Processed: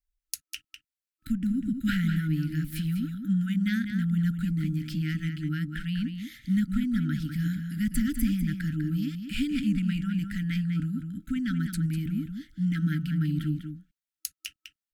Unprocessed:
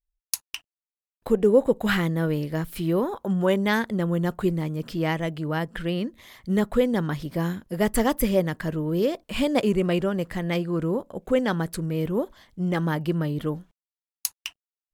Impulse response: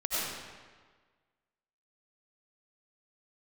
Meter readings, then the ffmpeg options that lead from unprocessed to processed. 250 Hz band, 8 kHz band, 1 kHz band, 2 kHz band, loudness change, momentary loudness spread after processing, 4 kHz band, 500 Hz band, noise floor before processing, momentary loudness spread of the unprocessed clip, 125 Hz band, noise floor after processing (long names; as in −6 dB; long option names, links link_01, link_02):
−1.5 dB, −6.5 dB, −18.0 dB, −6.5 dB, −4.0 dB, 11 LU, −6.0 dB, below −30 dB, below −85 dBFS, 9 LU, 0.0 dB, below −85 dBFS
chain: -filter_complex "[0:a]acrossover=split=270[link_01][link_02];[link_02]acompressor=threshold=-36dB:ratio=2[link_03];[link_01][link_03]amix=inputs=2:normalize=0,afftfilt=real='re*(1-between(b*sr/4096,320,1300))':imag='im*(1-between(b*sr/4096,320,1300))':win_size=4096:overlap=0.75,asplit=2[link_04][link_05];[link_05]adelay=198.3,volume=-7dB,highshelf=frequency=4000:gain=-4.46[link_06];[link_04][link_06]amix=inputs=2:normalize=0"